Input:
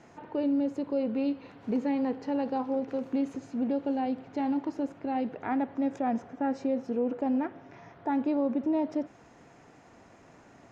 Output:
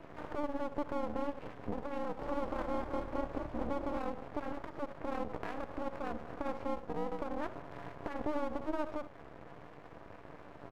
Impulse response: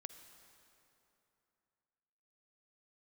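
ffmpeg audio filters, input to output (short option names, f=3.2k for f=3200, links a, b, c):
-filter_complex "[0:a]lowpass=1.5k,aecho=1:1:1.8:0.74,acompressor=threshold=-34dB:ratio=6,alimiter=level_in=8.5dB:limit=-24dB:level=0:latency=1:release=118,volume=-8.5dB,aeval=exprs='max(val(0),0)':c=same,tremolo=f=300:d=0.974,asettb=1/sr,asplit=3[a][b][c];[a]atrim=end=1.974[d];[b]atrim=start=1.97:end=3.99,asetpts=PTS-STARTPTS,afade=t=in:d=0.004:c=qsin,afade=t=out:st=2.016:d=0.004:c=qsin,asplit=7[e][f][g][h][i][j][k];[f]adelay=218,afreqshift=37,volume=-6.5dB[l];[g]adelay=436,afreqshift=74,volume=-13.1dB[m];[h]adelay=654,afreqshift=111,volume=-19.6dB[n];[i]adelay=872,afreqshift=148,volume=-26.2dB[o];[j]adelay=1090,afreqshift=185,volume=-32.7dB[p];[k]adelay=1308,afreqshift=222,volume=-39.3dB[q];[e][l][m][n][o][p][q]amix=inputs=7:normalize=0,atrim=end_sample=89082[r];[c]atrim=start=3.986[s];[d][r]acrossfade=d=0.004:c1=hsin:c2=qsin[t];[t][s]acrossfade=d=0.004:c1=qsin:c2=hsin[u];[1:a]atrim=start_sample=2205,atrim=end_sample=3969[v];[u][v]afir=irnorm=-1:irlink=0,volume=16dB"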